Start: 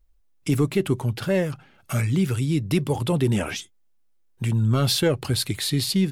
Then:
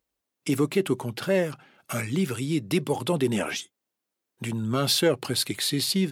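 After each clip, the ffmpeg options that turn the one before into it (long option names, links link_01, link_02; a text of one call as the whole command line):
ffmpeg -i in.wav -af "highpass=210" out.wav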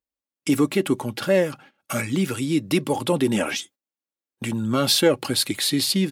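ffmpeg -i in.wav -af "aecho=1:1:3.6:0.33,agate=range=-16dB:threshold=-49dB:ratio=16:detection=peak,volume=3.5dB" out.wav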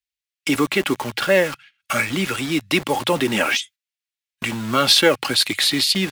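ffmpeg -i in.wav -filter_complex "[0:a]equalizer=frequency=2000:width=0.36:gain=12.5,acrossover=split=120|1800|8000[link_01][link_02][link_03][link_04];[link_02]acrusher=bits=4:mix=0:aa=0.000001[link_05];[link_01][link_05][link_03][link_04]amix=inputs=4:normalize=0,volume=-3dB" out.wav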